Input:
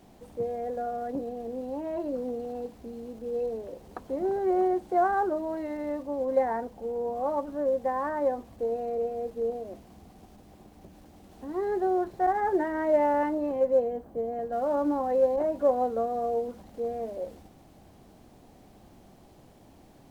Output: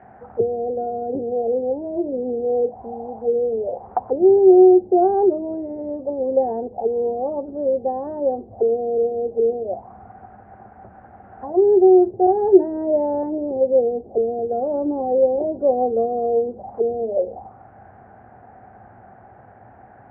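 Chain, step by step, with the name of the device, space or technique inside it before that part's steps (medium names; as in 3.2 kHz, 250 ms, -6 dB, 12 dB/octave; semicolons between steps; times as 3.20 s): envelope filter bass rig (touch-sensitive low-pass 380–1800 Hz down, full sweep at -30 dBFS; cabinet simulation 74–2200 Hz, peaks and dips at 110 Hz +8 dB, 160 Hz -8 dB, 300 Hz -9 dB, 760 Hz +10 dB, 1.1 kHz -4 dB); trim +6 dB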